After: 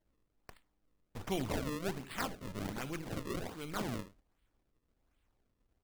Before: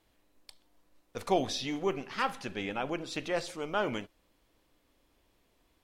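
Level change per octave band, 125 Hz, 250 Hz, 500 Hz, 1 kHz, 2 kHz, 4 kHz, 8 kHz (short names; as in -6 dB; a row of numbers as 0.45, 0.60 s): +2.5, -3.5, -8.5, -9.0, -7.0, -8.0, -3.5 dB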